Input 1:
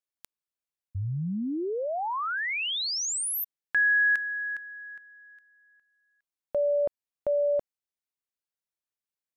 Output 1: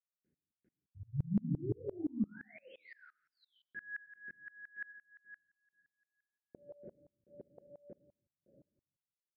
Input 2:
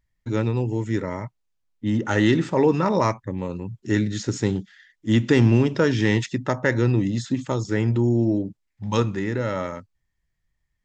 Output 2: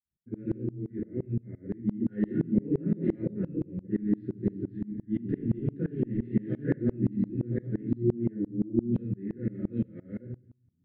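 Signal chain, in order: chunks repeated in reverse 446 ms, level 0 dB; high-pass 120 Hz 12 dB/octave; level-controlled noise filter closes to 1.7 kHz, open at -15 dBFS; FFT filter 360 Hz 0 dB, 880 Hz -30 dB, 1.6 kHz -13 dB, 3.2 kHz -30 dB; peak limiter -14 dBFS; static phaser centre 2.6 kHz, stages 4; feedback echo behind a high-pass 66 ms, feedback 56%, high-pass 1.9 kHz, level -15 dB; simulated room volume 30 m³, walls mixed, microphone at 0.89 m; resampled via 11.025 kHz; sawtooth tremolo in dB swelling 5.8 Hz, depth 27 dB; trim -5.5 dB

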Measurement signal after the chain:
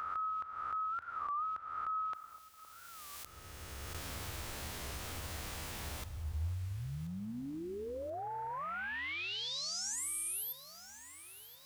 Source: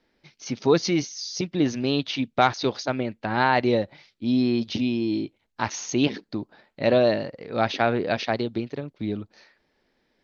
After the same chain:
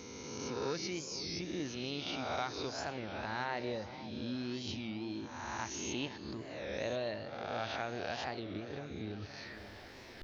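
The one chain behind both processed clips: reverse spectral sustain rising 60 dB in 1.00 s; bass shelf 480 Hz -6.5 dB; reverse; upward compressor, threshold -32 dBFS; reverse; peaking EQ 76 Hz +15 dB 0.87 oct; compression 2:1, threshold -41 dBFS; on a send: echo whose repeats swap between lows and highs 515 ms, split 1.1 kHz, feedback 69%, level -12.5 dB; on the sum: Schroeder reverb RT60 1.6 s, combs from 29 ms, DRR 16.5 dB; warped record 33 1/3 rpm, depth 160 cents; trim -4 dB

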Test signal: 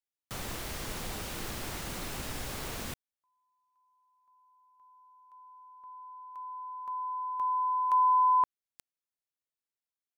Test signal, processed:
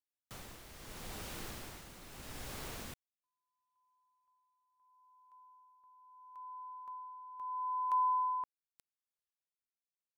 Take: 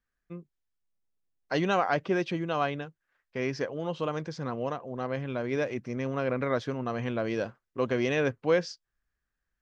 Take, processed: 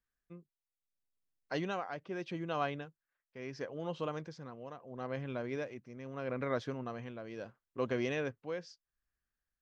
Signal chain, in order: tremolo 0.76 Hz, depth 66%; trim -6 dB

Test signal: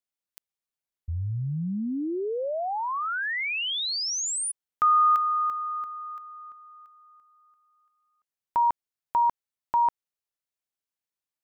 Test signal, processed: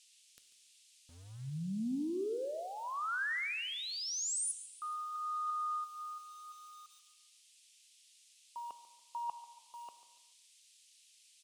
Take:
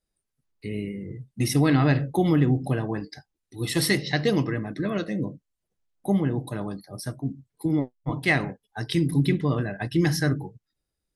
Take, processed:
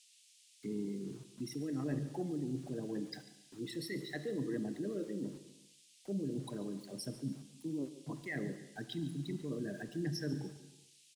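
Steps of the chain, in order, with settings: resonances exaggerated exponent 2; high-pass 160 Hz 24 dB/octave; reverse; compression 10:1, threshold -30 dBFS; reverse; saturation -19 dBFS; rotary cabinet horn 0.85 Hz; small samples zeroed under -54 dBFS; band noise 2.6–10 kHz -62 dBFS; feedback delay 143 ms, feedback 31%, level -16 dB; gated-style reverb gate 460 ms falling, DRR 11.5 dB; trim -3.5 dB

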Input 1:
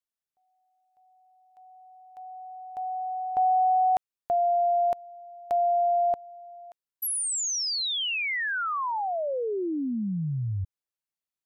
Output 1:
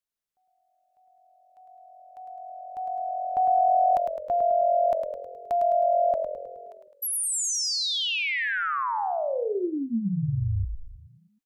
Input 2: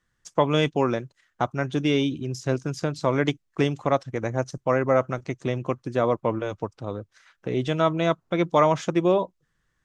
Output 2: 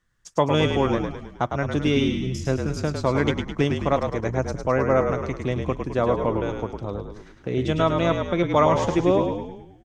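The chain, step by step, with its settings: bass shelf 79 Hz +6 dB; on a send: frequency-shifting echo 105 ms, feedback 52%, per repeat -44 Hz, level -5.5 dB

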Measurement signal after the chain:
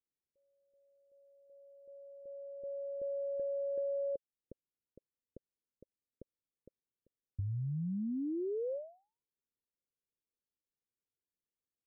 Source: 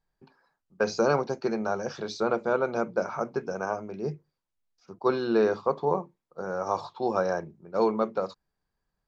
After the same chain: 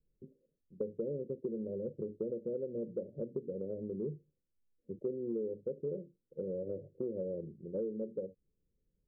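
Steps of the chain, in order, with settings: steep low-pass 550 Hz 96 dB/octave; compression 6:1, threshold -38 dBFS; trim +2.5 dB

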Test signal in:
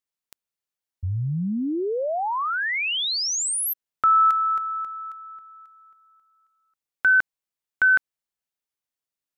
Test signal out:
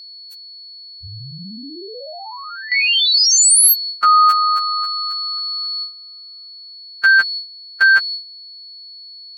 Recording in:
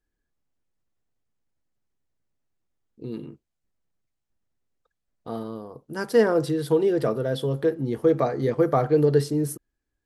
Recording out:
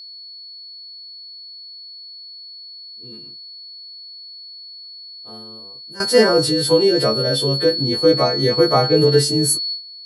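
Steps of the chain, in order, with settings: partials quantised in pitch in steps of 2 st; whistle 4.4 kHz -27 dBFS; gate with hold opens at -16 dBFS, closes at -27 dBFS, hold 135 ms, range -14 dB; trim +6 dB

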